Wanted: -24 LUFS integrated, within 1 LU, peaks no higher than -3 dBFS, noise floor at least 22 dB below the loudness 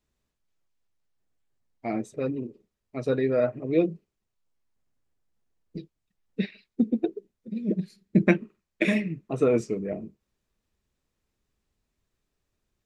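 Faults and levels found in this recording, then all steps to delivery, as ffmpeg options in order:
loudness -27.5 LUFS; peak level -4.5 dBFS; loudness target -24.0 LUFS
-> -af "volume=1.5,alimiter=limit=0.708:level=0:latency=1"

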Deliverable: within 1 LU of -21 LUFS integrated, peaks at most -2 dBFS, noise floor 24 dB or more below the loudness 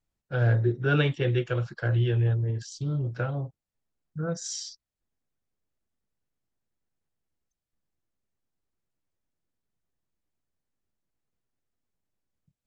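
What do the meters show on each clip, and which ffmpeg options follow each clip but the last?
loudness -27.5 LUFS; peak level -12.0 dBFS; loudness target -21.0 LUFS
-> -af "volume=2.11"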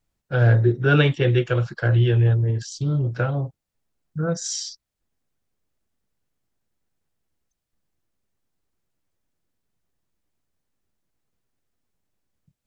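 loudness -21.0 LUFS; peak level -5.5 dBFS; noise floor -82 dBFS

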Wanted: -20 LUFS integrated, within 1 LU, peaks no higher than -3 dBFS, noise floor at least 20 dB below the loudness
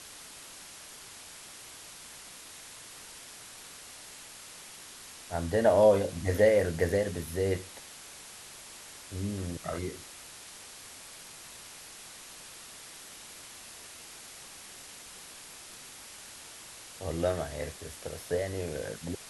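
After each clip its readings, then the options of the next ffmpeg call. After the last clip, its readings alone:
noise floor -48 dBFS; noise floor target -50 dBFS; loudness -29.5 LUFS; peak level -11.5 dBFS; loudness target -20.0 LUFS
-> -af "afftdn=nr=6:nf=-48"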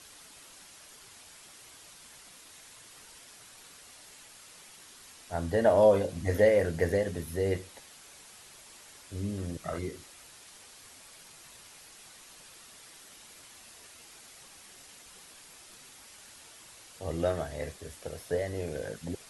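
noise floor -53 dBFS; loudness -30.0 LUFS; peak level -11.5 dBFS; loudness target -20.0 LUFS
-> -af "volume=3.16,alimiter=limit=0.708:level=0:latency=1"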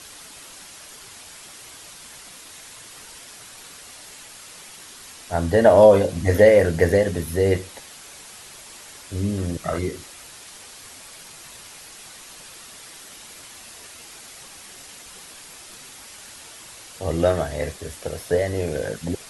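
loudness -20.0 LUFS; peak level -3.0 dBFS; noise floor -43 dBFS

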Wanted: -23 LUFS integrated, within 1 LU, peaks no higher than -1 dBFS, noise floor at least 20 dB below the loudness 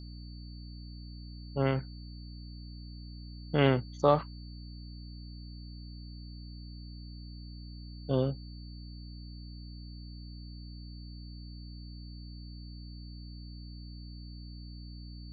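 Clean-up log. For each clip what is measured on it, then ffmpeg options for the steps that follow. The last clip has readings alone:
hum 60 Hz; highest harmonic 300 Hz; hum level -42 dBFS; steady tone 4.5 kHz; tone level -55 dBFS; loudness -38.0 LUFS; peak level -10.0 dBFS; loudness target -23.0 LUFS
-> -af "bandreject=f=60:t=h:w=4,bandreject=f=120:t=h:w=4,bandreject=f=180:t=h:w=4,bandreject=f=240:t=h:w=4,bandreject=f=300:t=h:w=4"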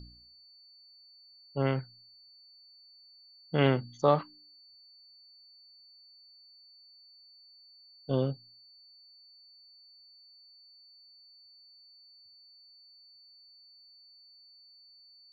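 hum not found; steady tone 4.5 kHz; tone level -55 dBFS
-> -af "bandreject=f=4500:w=30"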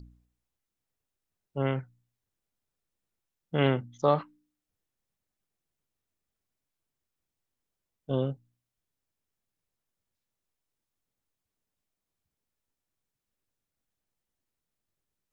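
steady tone not found; loudness -29.5 LUFS; peak level -10.0 dBFS; loudness target -23.0 LUFS
-> -af "volume=2.11"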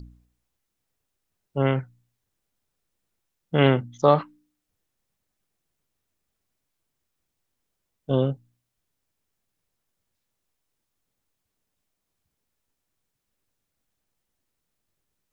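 loudness -23.5 LUFS; peak level -3.5 dBFS; noise floor -81 dBFS

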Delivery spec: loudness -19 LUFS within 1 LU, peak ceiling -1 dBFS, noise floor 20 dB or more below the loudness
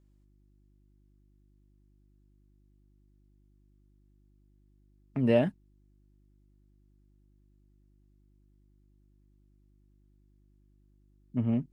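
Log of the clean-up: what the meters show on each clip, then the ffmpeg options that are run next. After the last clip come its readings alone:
hum 50 Hz; highest harmonic 350 Hz; hum level -60 dBFS; loudness -29.5 LUFS; peak level -12.0 dBFS; loudness target -19.0 LUFS
-> -af "bandreject=f=50:t=h:w=4,bandreject=f=100:t=h:w=4,bandreject=f=150:t=h:w=4,bandreject=f=200:t=h:w=4,bandreject=f=250:t=h:w=4,bandreject=f=300:t=h:w=4,bandreject=f=350:t=h:w=4"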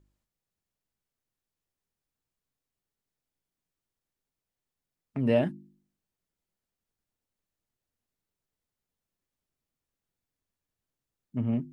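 hum not found; loudness -29.0 LUFS; peak level -13.0 dBFS; loudness target -19.0 LUFS
-> -af "volume=3.16"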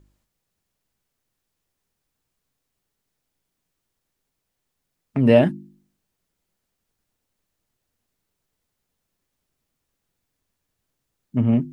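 loudness -19.5 LUFS; peak level -3.0 dBFS; noise floor -79 dBFS

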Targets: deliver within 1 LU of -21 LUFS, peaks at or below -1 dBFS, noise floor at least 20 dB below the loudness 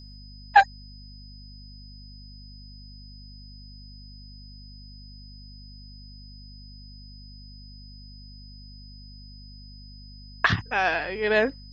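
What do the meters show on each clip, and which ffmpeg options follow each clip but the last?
hum 50 Hz; highest harmonic 250 Hz; hum level -43 dBFS; steady tone 5 kHz; tone level -49 dBFS; loudness -23.0 LUFS; peak level -4.0 dBFS; loudness target -21.0 LUFS
-> -af "bandreject=f=50:t=h:w=6,bandreject=f=100:t=h:w=6,bandreject=f=150:t=h:w=6,bandreject=f=200:t=h:w=6,bandreject=f=250:t=h:w=6"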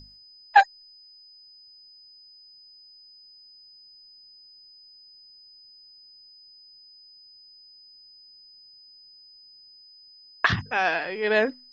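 hum not found; steady tone 5 kHz; tone level -49 dBFS
-> -af "bandreject=f=5000:w=30"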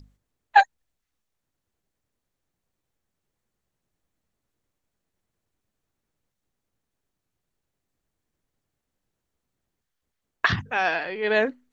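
steady tone not found; loudness -23.0 LUFS; peak level -4.0 dBFS; loudness target -21.0 LUFS
-> -af "volume=1.26"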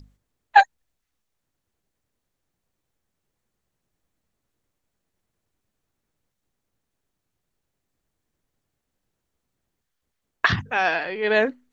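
loudness -21.0 LUFS; peak level -2.0 dBFS; noise floor -81 dBFS

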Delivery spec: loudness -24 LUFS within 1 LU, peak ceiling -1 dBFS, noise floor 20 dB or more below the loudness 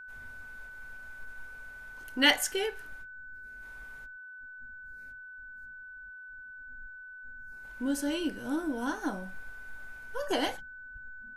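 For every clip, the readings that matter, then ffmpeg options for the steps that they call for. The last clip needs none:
steady tone 1.5 kHz; tone level -44 dBFS; loudness -33.0 LUFS; peak level -9.5 dBFS; loudness target -24.0 LUFS
-> -af "bandreject=f=1500:w=30"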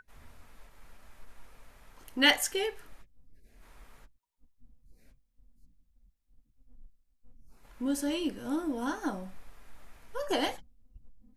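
steady tone not found; loudness -31.0 LUFS; peak level -9.5 dBFS; loudness target -24.0 LUFS
-> -af "volume=2.24"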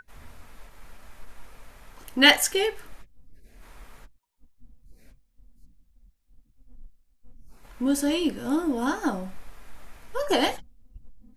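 loudness -24.0 LUFS; peak level -2.5 dBFS; noise floor -67 dBFS

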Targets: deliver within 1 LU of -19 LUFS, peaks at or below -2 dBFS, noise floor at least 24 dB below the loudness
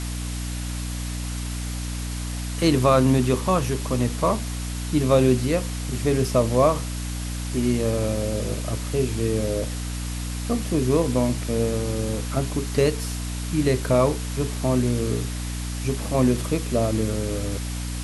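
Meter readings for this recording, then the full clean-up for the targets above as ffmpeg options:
hum 60 Hz; highest harmonic 300 Hz; hum level -27 dBFS; noise floor -30 dBFS; noise floor target -48 dBFS; loudness -24.0 LUFS; peak level -6.0 dBFS; loudness target -19.0 LUFS
-> -af "bandreject=f=60:t=h:w=6,bandreject=f=120:t=h:w=6,bandreject=f=180:t=h:w=6,bandreject=f=240:t=h:w=6,bandreject=f=300:t=h:w=6"
-af "afftdn=nr=18:nf=-30"
-af "volume=1.78,alimiter=limit=0.794:level=0:latency=1"

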